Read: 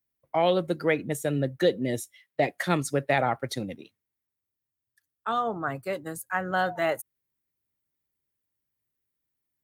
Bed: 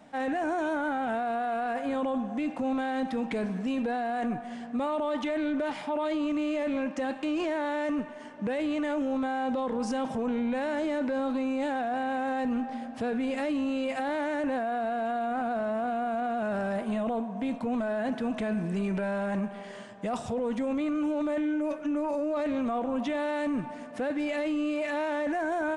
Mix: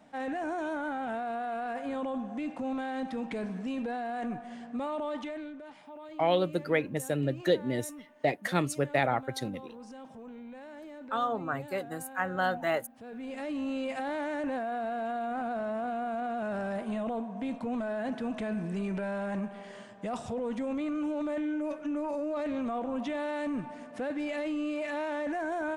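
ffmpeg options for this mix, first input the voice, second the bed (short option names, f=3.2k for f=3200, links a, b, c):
-filter_complex "[0:a]adelay=5850,volume=-3dB[a];[1:a]volume=8.5dB,afade=t=out:st=5.08:d=0.49:silence=0.251189,afade=t=in:st=13.03:d=0.68:silence=0.223872[b];[a][b]amix=inputs=2:normalize=0"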